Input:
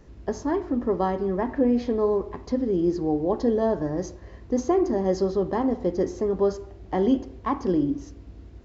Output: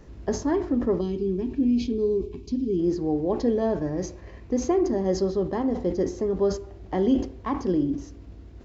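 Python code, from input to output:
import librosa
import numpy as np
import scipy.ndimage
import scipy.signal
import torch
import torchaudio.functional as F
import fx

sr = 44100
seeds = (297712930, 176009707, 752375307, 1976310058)

y = fx.spec_box(x, sr, start_s=1.0, length_s=1.79, low_hz=450.0, high_hz=2200.0, gain_db=-20)
y = fx.peak_eq(y, sr, hz=2400.0, db=7.5, octaves=0.3, at=(3.29, 4.73))
y = fx.rider(y, sr, range_db=3, speed_s=2.0)
y = fx.dynamic_eq(y, sr, hz=1000.0, q=0.86, threshold_db=-36.0, ratio=4.0, max_db=-4)
y = fx.sustainer(y, sr, db_per_s=130.0)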